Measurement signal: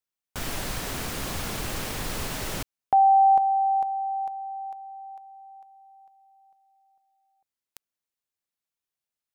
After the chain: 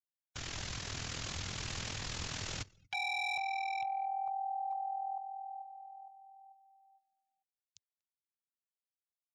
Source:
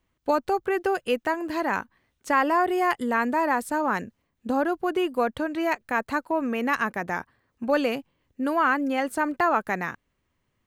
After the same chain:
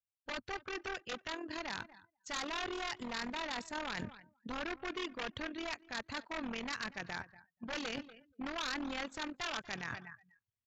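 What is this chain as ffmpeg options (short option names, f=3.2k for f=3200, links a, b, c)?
-filter_complex "[0:a]tremolo=f=41:d=0.71,equalizer=f=97:w=0.96:g=12.5,aeval=exprs='0.0708*(abs(mod(val(0)/0.0708+3,4)-2)-1)':c=same,dynaudnorm=f=590:g=5:m=4.5dB,asplit=2[a][b];[b]aecho=0:1:240|480:0.0841|0.0252[c];[a][c]amix=inputs=2:normalize=0,aresample=16000,aresample=44100,tiltshelf=f=1.4k:g=-6.5,asoftclip=type=tanh:threshold=-16dB,afftdn=nr=28:nf=-49,areverse,acompressor=threshold=-35dB:ratio=10:attack=0.17:release=924:knee=1:detection=rms,areverse,volume=3dB"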